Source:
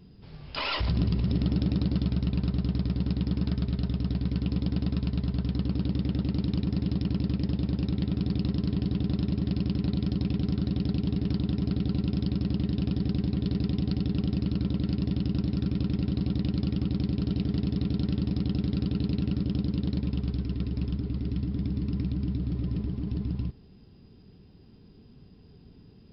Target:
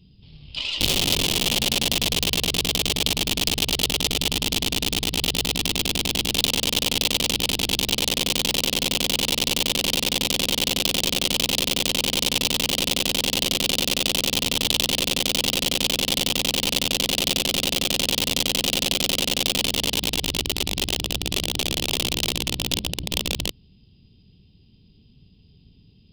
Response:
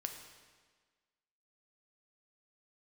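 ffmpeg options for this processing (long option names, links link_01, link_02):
-af "bass=frequency=250:gain=10,treble=frequency=4000:gain=-4,aeval=exprs='0.422*(cos(1*acos(clip(val(0)/0.422,-1,1)))-cos(1*PI/2))+0.0473*(cos(2*acos(clip(val(0)/0.422,-1,1)))-cos(2*PI/2))+0.00422*(cos(4*acos(clip(val(0)/0.422,-1,1)))-cos(4*PI/2))+0.00422*(cos(6*acos(clip(val(0)/0.422,-1,1)))-cos(6*PI/2))+0.0422*(cos(8*acos(clip(val(0)/0.422,-1,1)))-cos(8*PI/2))':channel_layout=same,aeval=exprs='(mod(4.47*val(0)+1,2)-1)/4.47':channel_layout=same,highshelf=frequency=2200:width_type=q:width=3:gain=12,volume=-9.5dB"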